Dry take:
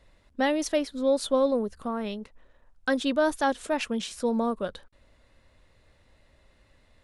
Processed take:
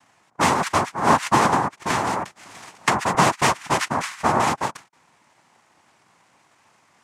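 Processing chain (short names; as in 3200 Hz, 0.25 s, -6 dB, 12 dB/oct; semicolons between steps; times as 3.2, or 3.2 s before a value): noise vocoder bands 2; ten-band EQ 500 Hz -6 dB, 1000 Hz +8 dB, 2000 Hz +8 dB, 4000 Hz -4 dB; 1.9–3.15 three-band squash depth 100%; gain +3.5 dB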